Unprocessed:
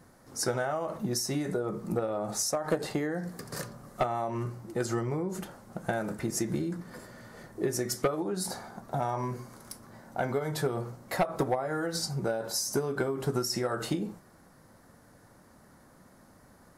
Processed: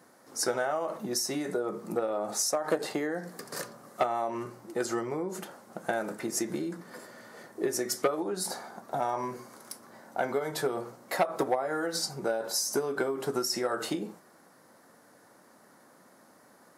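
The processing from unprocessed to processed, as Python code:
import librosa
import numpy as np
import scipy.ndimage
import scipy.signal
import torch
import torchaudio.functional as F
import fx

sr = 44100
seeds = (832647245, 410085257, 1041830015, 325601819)

y = scipy.signal.sosfilt(scipy.signal.butter(2, 280.0, 'highpass', fs=sr, output='sos'), x)
y = y * 10.0 ** (1.5 / 20.0)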